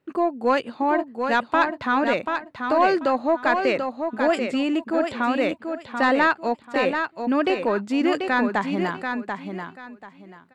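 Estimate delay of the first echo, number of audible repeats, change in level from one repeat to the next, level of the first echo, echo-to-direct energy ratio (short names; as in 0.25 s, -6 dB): 0.737 s, 3, -13.0 dB, -6.0 dB, -6.0 dB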